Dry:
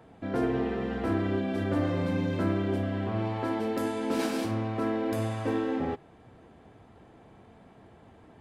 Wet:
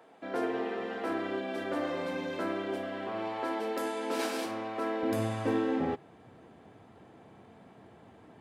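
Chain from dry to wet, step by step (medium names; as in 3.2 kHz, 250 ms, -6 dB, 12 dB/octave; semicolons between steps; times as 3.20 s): high-pass 410 Hz 12 dB/octave, from 5.03 s 110 Hz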